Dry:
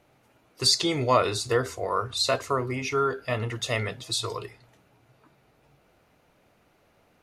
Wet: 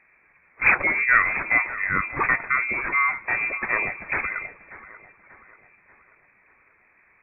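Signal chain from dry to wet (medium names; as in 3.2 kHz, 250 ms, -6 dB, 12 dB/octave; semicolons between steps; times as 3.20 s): decimation with a swept rate 10×, swing 60% 2.2 Hz; thinning echo 587 ms, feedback 49%, high-pass 360 Hz, level -15.5 dB; frequency inversion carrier 2.5 kHz; trim +3.5 dB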